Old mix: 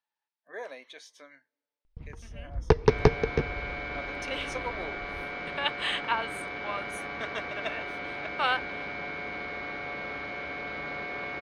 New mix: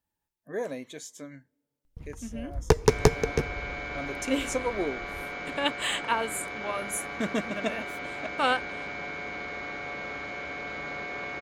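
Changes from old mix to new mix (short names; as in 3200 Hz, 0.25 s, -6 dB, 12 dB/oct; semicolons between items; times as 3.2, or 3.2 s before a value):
speech: remove HPF 760 Hz 12 dB/oct; first sound: remove air absorption 97 m; master: remove polynomial smoothing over 15 samples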